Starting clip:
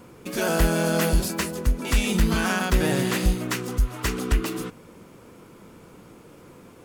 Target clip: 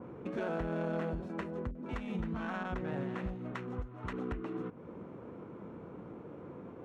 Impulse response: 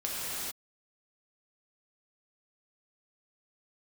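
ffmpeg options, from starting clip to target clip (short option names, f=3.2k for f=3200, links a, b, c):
-filter_complex "[0:a]lowshelf=f=190:g=-4,acompressor=threshold=-41dB:ratio=2.5,highpass=69,adynamicsmooth=sensitivity=2:basefreq=1.1k,bandreject=f=4.8k:w=7.2,asettb=1/sr,asplit=3[a][b][c];[a]atrim=end=1.714[d];[b]atrim=start=1.71:end=4.13,asetpts=PTS-STARTPTS,afade=t=in:d=0.004:c=qsin,afade=t=out:st=2.416:d=0.004:c=qsin,acrossover=split=380[e][f];[f]adelay=40[g];[e][g]amix=inputs=2:normalize=0,atrim=end_sample=106722[h];[c]atrim=start=4.126[i];[d][h]acrossfade=d=0.004:c1=hsin:c2=qsin[j];[j][i]acrossfade=d=0.004:c1=qsin:c2=hsin,adynamicequalizer=threshold=0.00141:dfrequency=2700:dqfactor=0.7:tfrequency=2700:tqfactor=0.7:attack=5:release=100:ratio=0.375:range=2:mode=cutabove:tftype=highshelf,volume=3dB"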